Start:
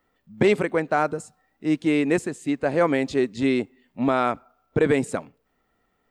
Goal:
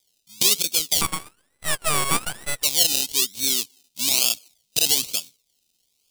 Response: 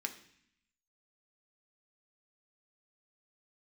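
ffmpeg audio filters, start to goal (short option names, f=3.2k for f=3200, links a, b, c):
-filter_complex "[0:a]acrusher=samples=31:mix=1:aa=0.000001:lfo=1:lforange=18.6:lforate=1.1,aexciter=amount=15.6:drive=8.7:freq=2.7k,asettb=1/sr,asplit=3[a][b][c];[a]atrim=end=1.014[d];[b]atrim=start=1.01:end=2.63,asetpts=PTS-STARTPTS,afade=t=in:d=0.004:c=qsin,afade=t=out:st=1.616:d=0.004:c=qsin,aeval=exprs='abs(val(0))':c=same[e];[c]atrim=start=2.626[f];[d][e]acrossfade=d=0.004:c1=hsin:c2=qsin[g];[g][f]acrossfade=d=0.004:c1=qsin:c2=hsin,volume=-15.5dB"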